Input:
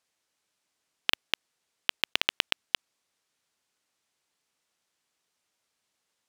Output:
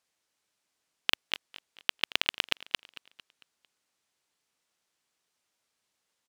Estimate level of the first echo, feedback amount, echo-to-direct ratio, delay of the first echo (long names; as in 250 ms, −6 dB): −19.0 dB, 45%, −18.0 dB, 225 ms